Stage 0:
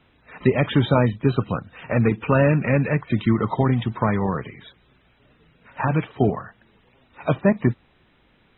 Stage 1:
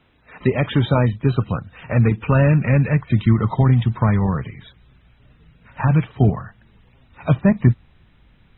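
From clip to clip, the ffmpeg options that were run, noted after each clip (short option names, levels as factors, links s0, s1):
-af "asubboost=boost=4:cutoff=170"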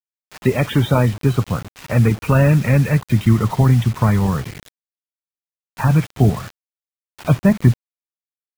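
-af "acrusher=bits=5:mix=0:aa=0.000001,volume=1.19"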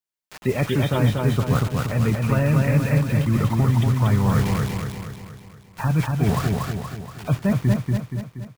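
-af "areverse,acompressor=threshold=0.0794:ratio=6,areverse,aecho=1:1:237|474|711|948|1185|1422|1659:0.708|0.368|0.191|0.0995|0.0518|0.0269|0.014,volume=1.58"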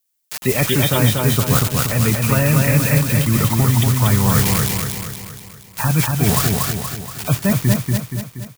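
-af "crystalizer=i=4.5:c=0,volume=1.41"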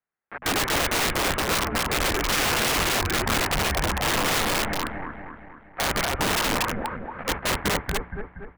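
-af "highpass=f=240:t=q:w=0.5412,highpass=f=240:t=q:w=1.307,lowpass=f=2100:t=q:w=0.5176,lowpass=f=2100:t=q:w=0.7071,lowpass=f=2100:t=q:w=1.932,afreqshift=-190,aeval=exprs='(mod(10.6*val(0)+1,2)-1)/10.6':c=same,bandreject=f=60:t=h:w=6,bandreject=f=120:t=h:w=6,bandreject=f=180:t=h:w=6,bandreject=f=240:t=h:w=6,volume=1.33"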